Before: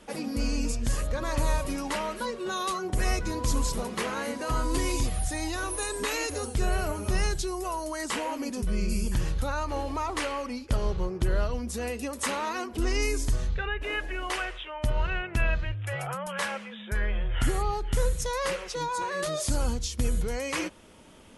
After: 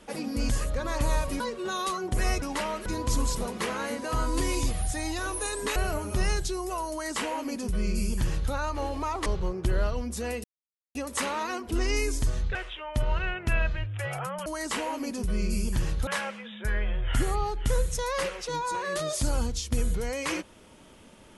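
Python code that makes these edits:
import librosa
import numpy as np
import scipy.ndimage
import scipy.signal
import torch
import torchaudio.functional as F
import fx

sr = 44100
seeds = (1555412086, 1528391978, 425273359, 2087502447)

y = fx.edit(x, sr, fx.cut(start_s=0.49, length_s=0.37),
    fx.move(start_s=1.77, length_s=0.44, to_s=3.23),
    fx.cut(start_s=6.13, length_s=0.57),
    fx.duplicate(start_s=7.85, length_s=1.61, to_s=16.34),
    fx.cut(start_s=10.2, length_s=0.63),
    fx.insert_silence(at_s=12.01, length_s=0.51),
    fx.cut(start_s=13.61, length_s=0.82), tone=tone)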